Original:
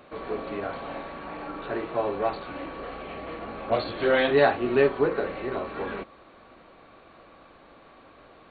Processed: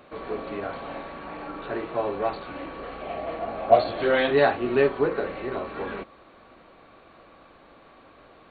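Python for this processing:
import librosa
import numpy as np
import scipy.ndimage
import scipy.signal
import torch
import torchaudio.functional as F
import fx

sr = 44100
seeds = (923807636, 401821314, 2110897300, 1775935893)

y = fx.peak_eq(x, sr, hz=680.0, db=12.5, octaves=0.43, at=(3.02, 4.02))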